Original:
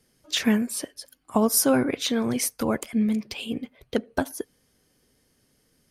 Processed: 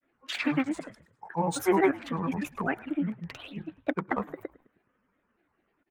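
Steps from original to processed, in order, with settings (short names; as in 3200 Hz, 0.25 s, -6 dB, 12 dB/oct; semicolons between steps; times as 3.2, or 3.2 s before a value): Wiener smoothing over 9 samples; thirty-one-band EQ 250 Hz +8 dB, 400 Hz -11 dB, 800 Hz -8 dB, 1250 Hz +9 dB, 4000 Hz -7 dB, 12500 Hz +7 dB; grains, grains 20/s, pitch spread up and down by 7 st; three-band isolator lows -14 dB, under 390 Hz, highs -17 dB, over 2800 Hz; frequency-shifting echo 0.105 s, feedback 50%, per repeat -48 Hz, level -21.5 dB; gain +1.5 dB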